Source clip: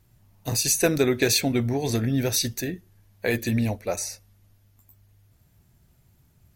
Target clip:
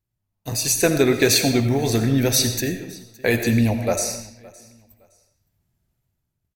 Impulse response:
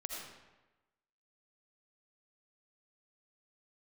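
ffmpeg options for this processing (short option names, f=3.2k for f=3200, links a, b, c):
-filter_complex "[0:a]agate=range=-19dB:threshold=-52dB:ratio=16:detection=peak,dynaudnorm=f=200:g=7:m=10dB,asettb=1/sr,asplit=3[a][b][c];[a]atrim=end=1.144[d];[b]atrim=start=1.14:end=2.04,asetpts=PTS-STARTPTS,afade=t=in:d=0.004:c=qsin,afade=t=out:st=0.896:d=0.004:c=qsin,acrusher=bits=8:dc=4:mix=0:aa=0.000001[e];[c]atrim=start=2.036[f];[d][e]acrossfade=d=0.004:c1=hsin:c2=qsin[g];[g][f]acrossfade=d=0.004:c1=qsin:c2=hsin,aecho=1:1:565|1130:0.0708|0.0184,asplit=2[h][i];[1:a]atrim=start_sample=2205,afade=t=out:st=0.35:d=0.01,atrim=end_sample=15876[j];[i][j]afir=irnorm=-1:irlink=0,volume=-0.5dB[k];[h][k]amix=inputs=2:normalize=0,volume=-6.5dB"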